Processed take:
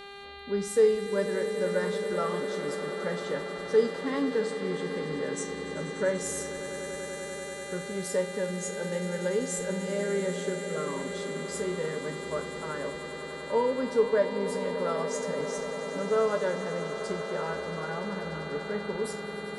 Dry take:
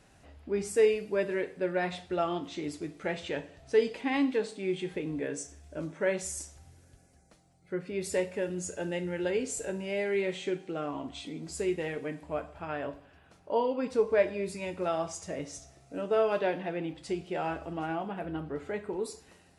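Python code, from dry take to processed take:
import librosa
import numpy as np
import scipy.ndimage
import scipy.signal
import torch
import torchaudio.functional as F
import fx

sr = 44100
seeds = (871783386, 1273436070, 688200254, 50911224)

y = fx.fixed_phaser(x, sr, hz=490.0, stages=8)
y = fx.dmg_buzz(y, sr, base_hz=400.0, harmonics=11, level_db=-48.0, tilt_db=-3, odd_only=False)
y = fx.echo_swell(y, sr, ms=97, loudest=8, wet_db=-15.5)
y = F.gain(torch.from_numpy(y), 3.0).numpy()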